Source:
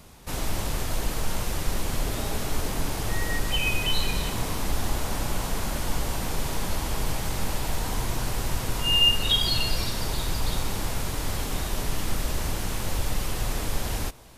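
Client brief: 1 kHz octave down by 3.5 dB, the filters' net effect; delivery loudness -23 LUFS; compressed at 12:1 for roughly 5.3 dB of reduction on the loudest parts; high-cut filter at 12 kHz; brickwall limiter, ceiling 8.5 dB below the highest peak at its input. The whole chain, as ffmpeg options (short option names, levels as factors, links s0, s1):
-af "lowpass=12000,equalizer=f=1000:t=o:g=-4.5,acompressor=threshold=0.0708:ratio=12,volume=3.76,alimiter=limit=0.266:level=0:latency=1"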